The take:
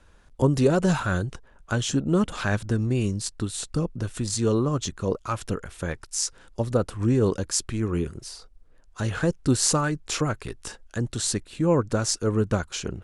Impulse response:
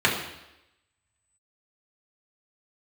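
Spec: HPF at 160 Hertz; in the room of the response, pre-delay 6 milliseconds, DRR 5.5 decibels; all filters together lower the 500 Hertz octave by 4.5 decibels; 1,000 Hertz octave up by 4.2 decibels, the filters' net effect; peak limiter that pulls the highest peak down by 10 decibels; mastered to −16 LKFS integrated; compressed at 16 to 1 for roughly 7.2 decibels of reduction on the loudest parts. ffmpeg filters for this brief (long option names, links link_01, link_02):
-filter_complex "[0:a]highpass=160,equalizer=frequency=500:width_type=o:gain=-7,equalizer=frequency=1000:width_type=o:gain=7,acompressor=threshold=-25dB:ratio=16,alimiter=limit=-20dB:level=0:latency=1,asplit=2[link_01][link_02];[1:a]atrim=start_sample=2205,adelay=6[link_03];[link_02][link_03]afir=irnorm=-1:irlink=0,volume=-23dB[link_04];[link_01][link_04]amix=inputs=2:normalize=0,volume=15.5dB"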